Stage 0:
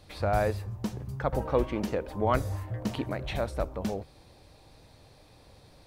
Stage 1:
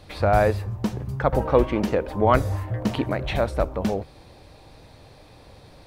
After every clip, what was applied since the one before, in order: tone controls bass -1 dB, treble -5 dB; trim +8 dB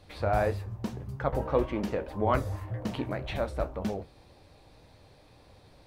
flange 1.8 Hz, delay 9.2 ms, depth 8.8 ms, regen -55%; trim -4 dB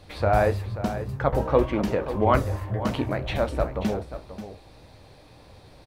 delay 535 ms -12 dB; trim +6 dB

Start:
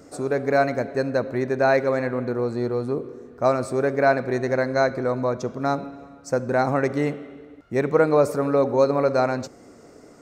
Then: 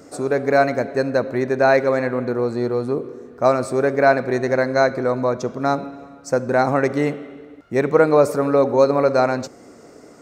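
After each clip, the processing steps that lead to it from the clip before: bass shelf 91 Hz -8 dB; trim +4 dB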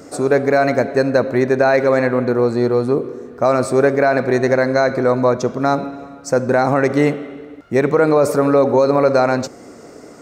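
peak limiter -9.5 dBFS, peak gain reduction 8 dB; trim +5.5 dB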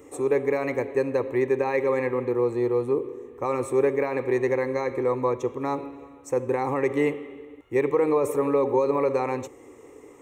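static phaser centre 980 Hz, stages 8; trim -6 dB

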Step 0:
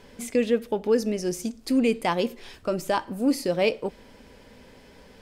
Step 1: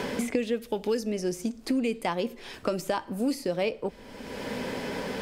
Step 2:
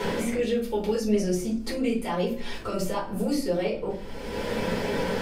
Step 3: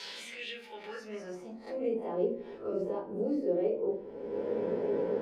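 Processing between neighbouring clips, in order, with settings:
three bands compressed up and down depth 100%; trim -4.5 dB
peak limiter -23 dBFS, peak gain reduction 10.5 dB; simulated room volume 170 m³, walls furnished, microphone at 4.4 m; trim -4 dB
reverse spectral sustain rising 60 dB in 0.31 s; band-pass sweep 4.5 kHz -> 400 Hz, 0.04–2.17 s

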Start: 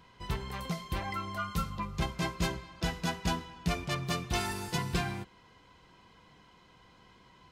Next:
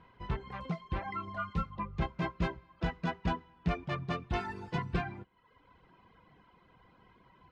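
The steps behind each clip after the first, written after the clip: reverb removal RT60 0.8 s; low-pass 2.1 kHz 12 dB/octave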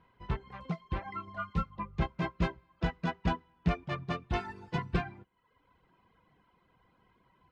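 upward expansion 1.5:1, over -45 dBFS; trim +3.5 dB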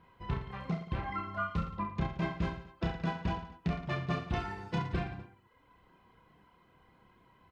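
compression, threshold -33 dBFS, peak gain reduction 11 dB; on a send: reverse bouncing-ball echo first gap 30 ms, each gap 1.25×, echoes 5; on the sum: trim +2.5 dB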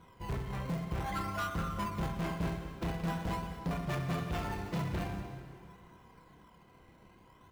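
in parallel at -5 dB: decimation with a swept rate 18×, swing 100% 0.47 Hz; on the sum: saturation -32 dBFS, distortion -7 dB; plate-style reverb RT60 2.3 s, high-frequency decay 0.85×, pre-delay 115 ms, DRR 8.5 dB; trim +1 dB

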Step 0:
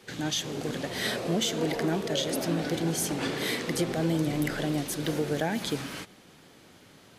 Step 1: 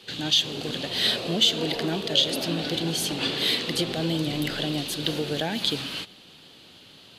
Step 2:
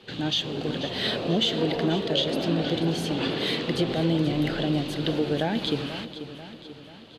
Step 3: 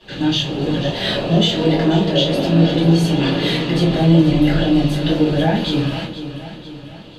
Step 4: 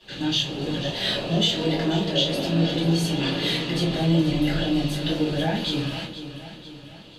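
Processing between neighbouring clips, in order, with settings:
high-order bell 3.5 kHz +11.5 dB 1 oct
low-pass 1.3 kHz 6 dB/octave; on a send: feedback delay 488 ms, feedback 52%, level -12.5 dB; on the sum: trim +3.5 dB
reverberation RT60 0.30 s, pre-delay 3 ms, DRR -8 dB; trim -3.5 dB
treble shelf 2.5 kHz +8.5 dB; trim -8.5 dB

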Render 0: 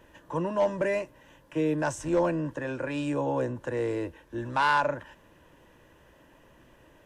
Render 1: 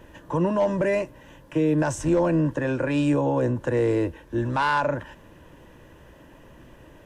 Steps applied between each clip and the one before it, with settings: peak limiter -22 dBFS, peak gain reduction 5.5 dB; bass shelf 380 Hz +6 dB; trim +5 dB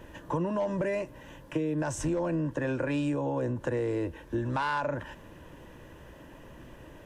compression, threshold -27 dBFS, peak gain reduction 9.5 dB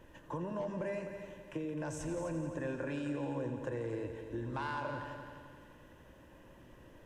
feedback comb 530 Hz, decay 0.46 s, mix 60%; multi-head delay 86 ms, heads all three, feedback 54%, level -12 dB; trim -2 dB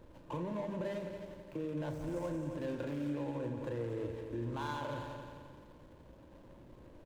median filter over 25 samples; peak limiter -33 dBFS, peak gain reduction 5 dB; doubling 34 ms -10.5 dB; trim +1.5 dB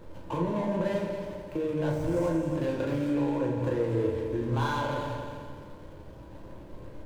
reverberation RT60 0.55 s, pre-delay 6 ms, DRR 1 dB; trim +7 dB

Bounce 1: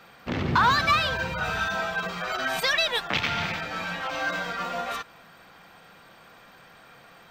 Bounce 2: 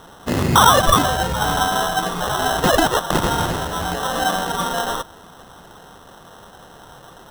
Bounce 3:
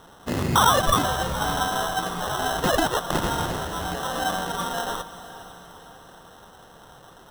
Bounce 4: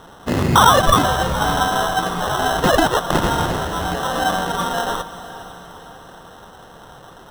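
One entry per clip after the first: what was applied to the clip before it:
sample-and-hold 19×; trim +8.5 dB
echo that smears into a reverb 495 ms, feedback 50%, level -14.5 dB; trim -6 dB
treble shelf 4.6 kHz -5 dB; trim +7 dB

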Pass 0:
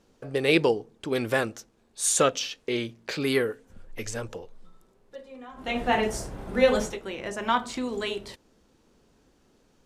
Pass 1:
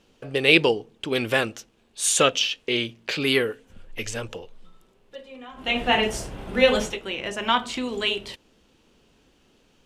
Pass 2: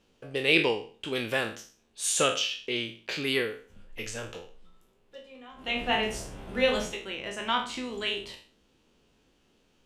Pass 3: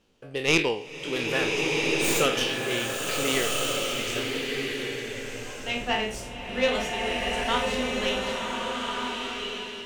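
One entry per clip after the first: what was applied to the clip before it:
peaking EQ 2.9 kHz +10 dB 0.75 oct; trim +1.5 dB
spectral sustain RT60 0.41 s; trim -7.5 dB
tracing distortion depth 0.059 ms; swelling reverb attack 1460 ms, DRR -1.5 dB

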